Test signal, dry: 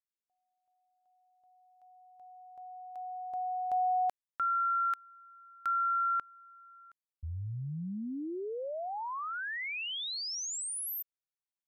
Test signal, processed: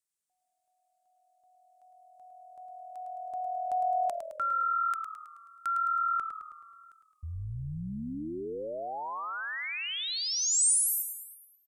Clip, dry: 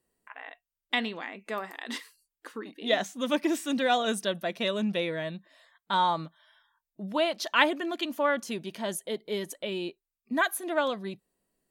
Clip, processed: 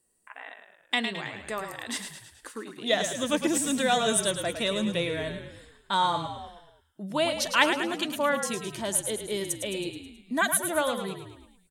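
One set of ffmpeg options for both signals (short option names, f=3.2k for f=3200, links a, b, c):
-filter_complex "[0:a]equalizer=f=8.6k:t=o:w=1:g=13.5,asplit=2[a][b];[b]asplit=6[c][d][e][f][g][h];[c]adelay=107,afreqshift=-40,volume=-8dB[i];[d]adelay=214,afreqshift=-80,volume=-13.5dB[j];[e]adelay=321,afreqshift=-120,volume=-19dB[k];[f]adelay=428,afreqshift=-160,volume=-24.5dB[l];[g]adelay=535,afreqshift=-200,volume=-30.1dB[m];[h]adelay=642,afreqshift=-240,volume=-35.6dB[n];[i][j][k][l][m][n]amix=inputs=6:normalize=0[o];[a][o]amix=inputs=2:normalize=0"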